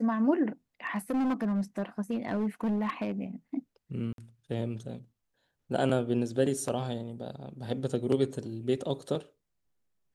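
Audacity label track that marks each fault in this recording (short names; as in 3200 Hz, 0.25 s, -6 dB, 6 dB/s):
0.860000	3.120000	clipped -25.5 dBFS
4.130000	4.180000	gap 52 ms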